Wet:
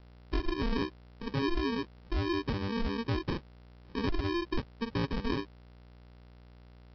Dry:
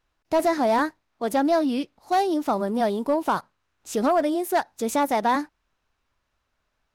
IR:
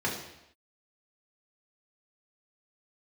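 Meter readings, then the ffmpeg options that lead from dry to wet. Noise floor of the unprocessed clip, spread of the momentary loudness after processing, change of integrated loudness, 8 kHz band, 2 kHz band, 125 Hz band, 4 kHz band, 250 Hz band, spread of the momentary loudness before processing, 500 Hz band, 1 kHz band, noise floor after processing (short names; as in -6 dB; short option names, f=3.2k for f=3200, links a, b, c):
-76 dBFS, 6 LU, -10.5 dB, under -20 dB, -7.5 dB, +8.0 dB, -2.5 dB, -8.0 dB, 7 LU, -13.5 dB, -17.0 dB, -55 dBFS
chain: -af "equalizer=f=2k:w=0.68:g=-7,aeval=exprs='val(0)+0.00562*(sin(2*PI*60*n/s)+sin(2*PI*2*60*n/s)/2+sin(2*PI*3*60*n/s)/3+sin(2*PI*4*60*n/s)/4+sin(2*PI*5*60*n/s)/5)':c=same,aresample=11025,acrusher=samples=16:mix=1:aa=0.000001,aresample=44100,volume=-7.5dB"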